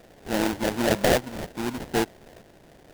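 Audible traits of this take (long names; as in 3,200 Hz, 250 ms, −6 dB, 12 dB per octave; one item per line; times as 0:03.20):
a buzz of ramps at a fixed pitch in blocks of 8 samples
tremolo saw up 0.83 Hz, depth 40%
aliases and images of a low sample rate 1,200 Hz, jitter 20%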